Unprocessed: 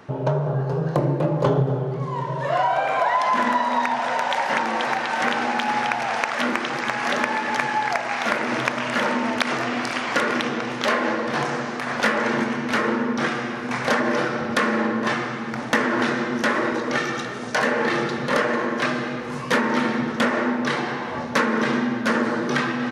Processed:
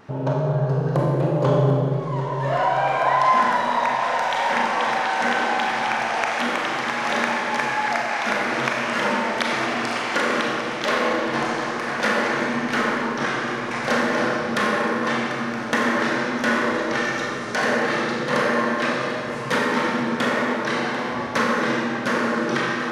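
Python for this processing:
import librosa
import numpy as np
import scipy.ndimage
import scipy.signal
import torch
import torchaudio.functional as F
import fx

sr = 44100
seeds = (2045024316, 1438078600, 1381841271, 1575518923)

y = fx.vibrato(x, sr, rate_hz=0.74, depth_cents=7.9)
y = fx.echo_thinned(y, sr, ms=743, feedback_pct=51, hz=150.0, wet_db=-14.0)
y = fx.rev_schroeder(y, sr, rt60_s=1.5, comb_ms=30, drr_db=-0.5)
y = y * 10.0 ** (-2.5 / 20.0)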